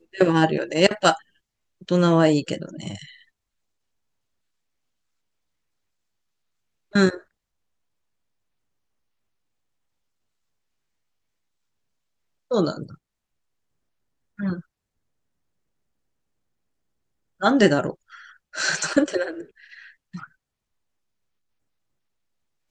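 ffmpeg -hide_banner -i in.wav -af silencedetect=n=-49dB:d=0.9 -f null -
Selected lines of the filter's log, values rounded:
silence_start: 3.23
silence_end: 6.92 | silence_duration: 3.69
silence_start: 7.23
silence_end: 12.51 | silence_duration: 5.28
silence_start: 12.95
silence_end: 14.38 | silence_duration: 1.43
silence_start: 14.61
silence_end: 17.40 | silence_duration: 2.79
silence_start: 20.27
silence_end: 22.70 | silence_duration: 2.44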